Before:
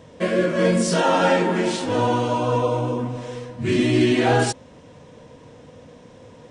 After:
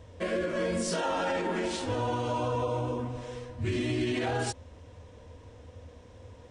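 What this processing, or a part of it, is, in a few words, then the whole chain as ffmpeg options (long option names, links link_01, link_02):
car stereo with a boomy subwoofer: -af "lowshelf=frequency=110:width_type=q:width=3:gain=9.5,alimiter=limit=-14.5dB:level=0:latency=1:release=57,volume=-7dB"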